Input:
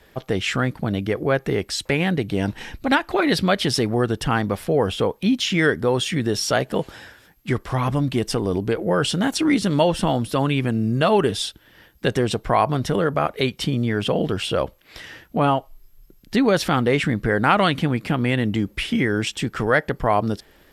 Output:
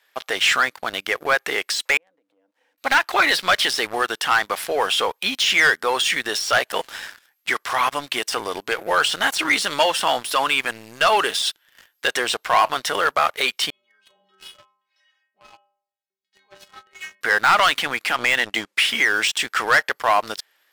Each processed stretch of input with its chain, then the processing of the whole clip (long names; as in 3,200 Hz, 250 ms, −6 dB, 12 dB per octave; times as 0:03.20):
0:01.97–0:02.78: spike at every zero crossing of −25 dBFS + pair of resonant band-passes 380 Hz, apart 0.78 octaves + downward compressor 3 to 1, threshold −43 dBFS
0:13.70–0:17.21: downward compressor, threshold −20 dBFS + high-frequency loss of the air 84 metres + stiff-string resonator 190 Hz, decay 0.7 s, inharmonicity 0.008
0:18.16–0:18.77: low-pass filter 9,600 Hz 24 dB per octave + transient designer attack +10 dB, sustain −1 dB
whole clip: high-pass filter 1,100 Hz 12 dB per octave; de-essing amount 65%; leveller curve on the samples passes 3